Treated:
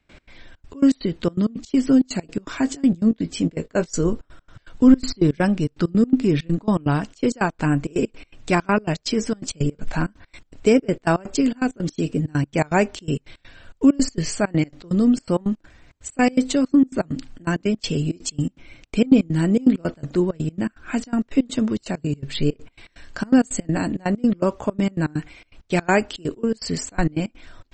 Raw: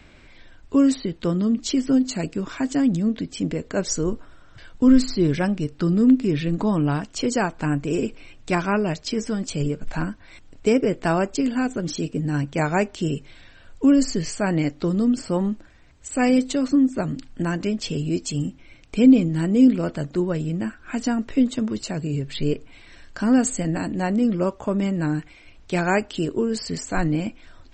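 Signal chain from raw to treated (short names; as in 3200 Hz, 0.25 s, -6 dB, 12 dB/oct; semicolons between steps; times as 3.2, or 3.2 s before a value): in parallel at -12 dB: soft clip -13.5 dBFS, distortion -14 dB; on the sum: step gate ".x.xxx.x" 164 bpm -24 dB; 2.6–4.1 doubler 18 ms -11 dB; gain +1.5 dB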